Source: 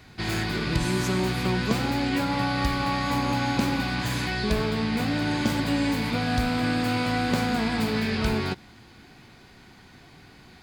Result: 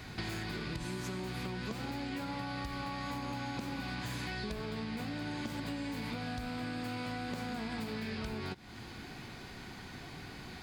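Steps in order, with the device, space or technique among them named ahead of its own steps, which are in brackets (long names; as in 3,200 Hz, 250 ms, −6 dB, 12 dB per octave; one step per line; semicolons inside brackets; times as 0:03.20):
serial compression, leveller first (downward compressor 3 to 1, threshold −28 dBFS, peak gain reduction 8 dB; downward compressor 4 to 1, threshold −42 dBFS, peak gain reduction 14.5 dB)
level +3.5 dB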